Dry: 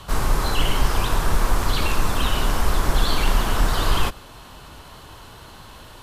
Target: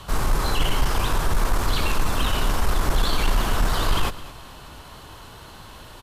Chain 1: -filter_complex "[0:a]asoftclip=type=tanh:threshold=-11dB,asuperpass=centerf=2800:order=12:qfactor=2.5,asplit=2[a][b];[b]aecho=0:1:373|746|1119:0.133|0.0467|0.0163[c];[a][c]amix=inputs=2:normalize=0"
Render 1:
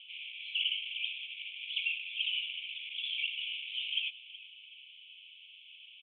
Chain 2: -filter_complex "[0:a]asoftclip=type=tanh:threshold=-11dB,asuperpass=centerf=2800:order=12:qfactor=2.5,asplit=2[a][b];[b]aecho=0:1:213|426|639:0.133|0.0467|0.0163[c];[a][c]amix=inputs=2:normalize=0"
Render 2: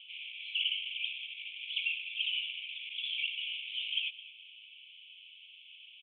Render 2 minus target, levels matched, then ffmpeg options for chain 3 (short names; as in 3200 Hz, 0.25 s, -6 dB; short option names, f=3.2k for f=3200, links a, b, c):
2000 Hz band +3.5 dB
-filter_complex "[0:a]asoftclip=type=tanh:threshold=-11dB,asplit=2[a][b];[b]aecho=0:1:213|426|639:0.133|0.0467|0.0163[c];[a][c]amix=inputs=2:normalize=0"